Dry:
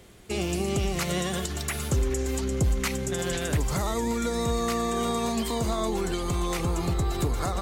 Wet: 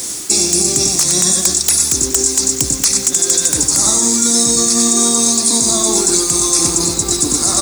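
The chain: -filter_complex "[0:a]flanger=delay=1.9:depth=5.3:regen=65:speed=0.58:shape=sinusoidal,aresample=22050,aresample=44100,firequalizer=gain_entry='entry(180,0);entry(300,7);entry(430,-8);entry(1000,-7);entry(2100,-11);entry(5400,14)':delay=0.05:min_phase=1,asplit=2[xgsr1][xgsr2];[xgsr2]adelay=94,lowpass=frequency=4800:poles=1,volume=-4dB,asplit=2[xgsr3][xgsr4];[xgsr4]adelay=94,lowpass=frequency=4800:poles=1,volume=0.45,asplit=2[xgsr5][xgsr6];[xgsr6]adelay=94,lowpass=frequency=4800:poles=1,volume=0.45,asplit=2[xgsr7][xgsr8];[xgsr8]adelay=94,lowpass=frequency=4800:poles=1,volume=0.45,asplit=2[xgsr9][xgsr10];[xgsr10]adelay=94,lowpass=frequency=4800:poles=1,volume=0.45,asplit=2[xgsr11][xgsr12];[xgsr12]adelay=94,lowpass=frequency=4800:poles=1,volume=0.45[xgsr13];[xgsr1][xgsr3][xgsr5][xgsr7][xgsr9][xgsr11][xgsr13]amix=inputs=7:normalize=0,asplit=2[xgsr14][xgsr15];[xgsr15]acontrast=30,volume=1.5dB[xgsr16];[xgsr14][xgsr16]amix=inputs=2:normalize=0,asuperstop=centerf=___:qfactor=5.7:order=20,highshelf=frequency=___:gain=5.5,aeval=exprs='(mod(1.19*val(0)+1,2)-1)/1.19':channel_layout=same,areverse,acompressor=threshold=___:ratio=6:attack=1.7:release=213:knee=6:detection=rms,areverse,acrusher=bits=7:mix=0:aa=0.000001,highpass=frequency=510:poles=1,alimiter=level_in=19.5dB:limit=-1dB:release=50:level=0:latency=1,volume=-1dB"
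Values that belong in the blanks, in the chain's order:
3000, 8500, -23dB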